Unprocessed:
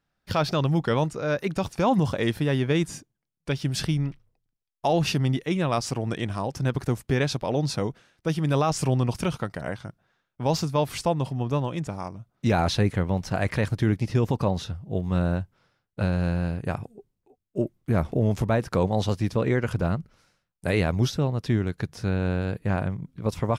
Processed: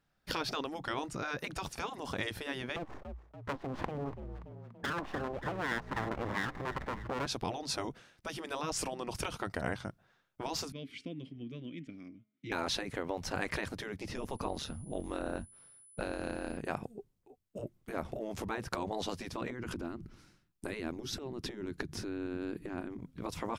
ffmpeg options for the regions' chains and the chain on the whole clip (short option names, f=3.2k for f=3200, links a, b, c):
-filter_complex "[0:a]asettb=1/sr,asplit=3[a][b][c];[a]atrim=end=2.764[d];[b]atrim=start=2.76:end=7.26,asetpts=PTS-STARTPTS,afade=t=in:d=0.004:c=qsin,afade=t=out:st=4.496:d=0.004:c=qsin,lowpass=f=920:t=q:w=7.4,aeval=exprs='abs(val(0))':c=same,asplit=5[e][f][g][h][i];[f]adelay=287,afreqshift=57,volume=-19.5dB[j];[g]adelay=574,afreqshift=114,volume=-25dB[k];[h]adelay=861,afreqshift=171,volume=-30.5dB[l];[i]adelay=1148,afreqshift=228,volume=-36dB[m];[e][j][k][l][m]amix=inputs=5:normalize=0,atrim=end_sample=198450[n];[c]atrim=start=7.256[o];[d][n]acrossfade=d=0.004:c1=hsin:c2=qsin[p];[p][o]acrossfade=d=0.004:c1=qsin:c2=hsin,asettb=1/sr,asplit=3[q][r][s];[q]atrim=end=10.724[t];[r]atrim=start=10.72:end=12.52,asetpts=PTS-STARTPTS,afade=t=in:d=0.004:c=qsin,afade=t=out:st=1.796:d=0.004:c=qsin,asplit=3[u][v][w];[u]bandpass=f=270:t=q:w=8,volume=0dB[x];[v]bandpass=f=2.29k:t=q:w=8,volume=-6dB[y];[w]bandpass=f=3.01k:t=q:w=8,volume=-9dB[z];[x][y][z]amix=inputs=3:normalize=0,bandreject=f=212.6:t=h:w=4,bandreject=f=425.2:t=h:w=4,bandreject=f=637.8:t=h:w=4,bandreject=f=850.4:t=h:w=4,bandreject=f=1.063k:t=h:w=4,bandreject=f=1.2756k:t=h:w=4,bandreject=f=1.4882k:t=h:w=4,bandreject=f=1.7008k:t=h:w=4,bandreject=f=1.9134k:t=h:w=4,bandreject=f=2.126k:t=h:w=4,bandreject=f=2.3386k:t=h:w=4,bandreject=f=2.5512k:t=h:w=4,bandreject=f=2.7638k:t=h:w=4,bandreject=f=2.9764k:t=h:w=4,bandreject=f=3.189k:t=h:w=4[aa];[s]atrim=start=12.516[ab];[t][aa]acrossfade=d=0.004:c1=hsin:c2=qsin[ac];[ac][ab]acrossfade=d=0.004:c1=qsin:c2=hsin,asettb=1/sr,asplit=3[ad][ae][af];[ad]atrim=end=14.164[ag];[ae]atrim=start=14.16:end=16.57,asetpts=PTS-STARTPTS,afade=t=in:d=0.004:c=qsin,afade=t=out:st=2.406:d=0.004:c=qsin,tremolo=f=140:d=0.71,aeval=exprs='val(0)+0.00158*sin(2*PI*10000*n/s)':c=same[ah];[af]atrim=start=16.566[ai];[ag][ah]acrossfade=d=0.004:c1=hsin:c2=qsin[aj];[aj][ai]acrossfade=d=0.004:c1=qsin:c2=hsin,asettb=1/sr,asplit=3[ak][al][am];[ak]atrim=end=19.504[an];[al]atrim=start=19.5:end=22.99,asetpts=PTS-STARTPTS,afade=t=in:d=0.004:c=qsin,afade=t=out:st=3.486:d=0.004:c=qsin,lowshelf=f=420:t=q:w=3:g=6,acompressor=threshold=-25dB:ratio=10:attack=3.2:release=140:knee=1:detection=peak[ao];[am]atrim=start=22.986[ap];[an][ao]acrossfade=d=0.004:c1=hsin:c2=qsin[aq];[aq][ap]acrossfade=d=0.004:c1=qsin:c2=hsin,acompressor=threshold=-26dB:ratio=6,afftfilt=real='re*lt(hypot(re,im),0.141)':imag='im*lt(hypot(re,im),0.141)':win_size=1024:overlap=0.75"